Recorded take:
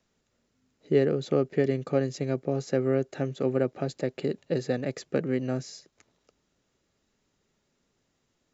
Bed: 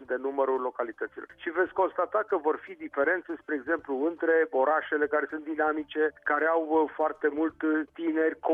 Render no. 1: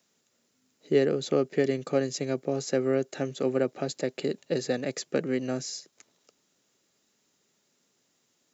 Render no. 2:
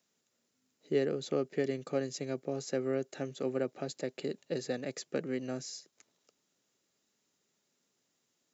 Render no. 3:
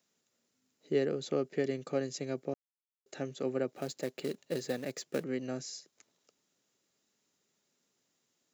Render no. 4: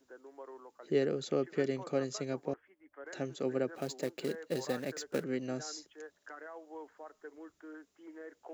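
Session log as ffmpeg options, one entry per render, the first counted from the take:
-af "highpass=170,highshelf=f=4.3k:g=12"
-af "volume=-7dB"
-filter_complex "[0:a]asettb=1/sr,asplit=3[a][b][c];[a]atrim=end=3.734[d];[b]atrim=start=3.73:end=5.24,asetpts=PTS-STARTPTS,afade=t=in:d=0.004:c=qsin,afade=t=out:st=1.506:d=0.004:c=qsin,acrusher=bits=4:mode=log:mix=0:aa=0.000001[e];[c]atrim=start=5.236[f];[d][e]acrossfade=d=0.004:c1=hsin:c2=qsin[g];[g][f]acrossfade=d=0.004:c1=qsin:c2=hsin,asplit=3[h][i][j];[h]atrim=end=2.54,asetpts=PTS-STARTPTS,afade=t=out:st=2.536:d=0.004:c=hsin[k];[i]atrim=start=2.54:end=3.06,asetpts=PTS-STARTPTS,volume=0[l];[j]atrim=start=3.06,asetpts=PTS-STARTPTS,afade=t=in:d=0.004:c=hsin[m];[k][l][m]concat=n=3:v=0:a=1"
-filter_complex "[1:a]volume=-22.5dB[a];[0:a][a]amix=inputs=2:normalize=0"

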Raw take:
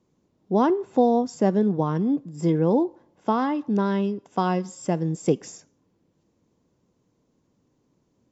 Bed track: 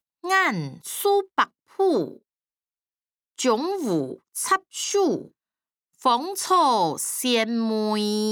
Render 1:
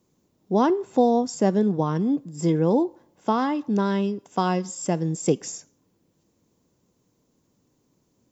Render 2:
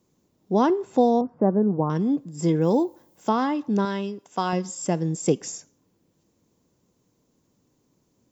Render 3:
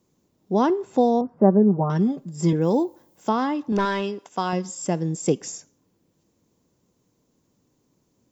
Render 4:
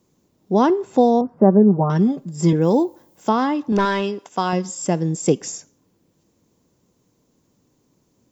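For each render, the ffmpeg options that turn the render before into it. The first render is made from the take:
-af "aemphasis=mode=production:type=50kf"
-filter_complex "[0:a]asettb=1/sr,asplit=3[a][b][c];[a]atrim=end=1.214[d];[b]atrim=start=1.21:end=1.9,asetpts=PTS-STARTPTS,afade=t=in:d=0.004:c=qsin,afade=t=out:st=0.686:d=0.004:c=qsin,lowpass=f=1.3k:w=0.5412,lowpass=f=1.3k:w=1.3066[e];[c]atrim=start=1.896[f];[d][e]acrossfade=d=0.004:c1=hsin:c2=qsin[g];[g][f]acrossfade=d=0.004:c1=qsin:c2=hsin,asettb=1/sr,asplit=3[h][i][j];[h]atrim=end=2.614[k];[i]atrim=start=2.61:end=3.29,asetpts=PTS-STARTPTS,afade=t=in:d=0.004:c=qsin,afade=t=out:st=0.676:d=0.004:c=qsin,aemphasis=mode=production:type=50fm[l];[j]atrim=start=3.286[m];[k][l]acrossfade=d=0.004:c1=hsin:c2=qsin[n];[n][m]acrossfade=d=0.004:c1=qsin:c2=hsin,asettb=1/sr,asplit=3[o][p][q];[o]atrim=end=3.854[r];[p]atrim=start=3.85:end=4.53,asetpts=PTS-STARTPTS,afade=t=in:d=0.004:c=qsin,afade=t=out:st=0.676:d=0.004:c=qsin,lowshelf=f=460:g=-7[s];[q]atrim=start=4.526[t];[r][s]acrossfade=d=0.004:c1=hsin:c2=qsin[u];[u][t]acrossfade=d=0.004:c1=qsin:c2=hsin"
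-filter_complex "[0:a]asettb=1/sr,asplit=3[a][b][c];[a]atrim=end=1.374[d];[b]atrim=start=1.37:end=2.53,asetpts=PTS-STARTPTS,afade=t=in:d=0.004:c=qsin,afade=t=out:st=1.156:d=0.004:c=qsin,aecho=1:1:5.1:0.76,atrim=end_sample=51156[e];[c]atrim=start=2.526[f];[d][e]acrossfade=d=0.004:c1=hsin:c2=qsin[g];[g][f]acrossfade=d=0.004:c1=qsin:c2=hsin,asettb=1/sr,asplit=3[h][i][j];[h]atrim=end=3.724[k];[i]atrim=start=3.72:end=4.29,asetpts=PTS-STARTPTS,afade=t=in:d=0.004:c=qsin,afade=t=out:st=0.566:d=0.004:c=qsin,asplit=2[l][m];[m]highpass=f=720:p=1,volume=16dB,asoftclip=type=tanh:threshold=-12dB[n];[l][n]amix=inputs=2:normalize=0,lowpass=f=3.3k:p=1,volume=-6dB[o];[j]atrim=start=4.286[p];[k][o]acrossfade=d=0.004:c1=hsin:c2=qsin[q];[q][p]acrossfade=d=0.004:c1=qsin:c2=hsin"
-af "volume=4dB,alimiter=limit=-2dB:level=0:latency=1"

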